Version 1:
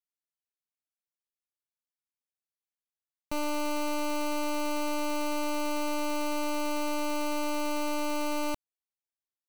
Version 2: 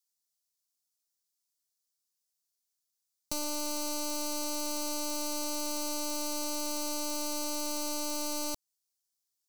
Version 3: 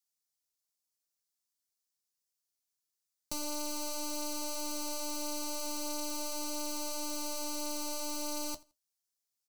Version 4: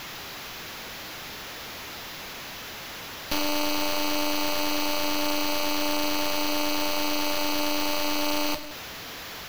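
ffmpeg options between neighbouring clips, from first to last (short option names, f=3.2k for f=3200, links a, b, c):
-filter_complex "[0:a]highshelf=f=3.5k:t=q:w=1.5:g=13,acrossover=split=1700|7600[a][b][c];[a]acompressor=threshold=-35dB:ratio=4[d];[b]acompressor=threshold=-35dB:ratio=4[e];[c]acompressor=threshold=-35dB:ratio=4[f];[d][e][f]amix=inputs=3:normalize=0,volume=-1.5dB"
-af "flanger=delay=7.2:depth=6.5:regen=-54:speed=0.42:shape=triangular,aecho=1:1:83|166:0.0668|0.016,volume=1dB"
-af "aeval=exprs='val(0)+0.5*0.00944*sgn(val(0))':c=same,acrusher=samples=5:mix=1:aa=0.000001,volume=9dB"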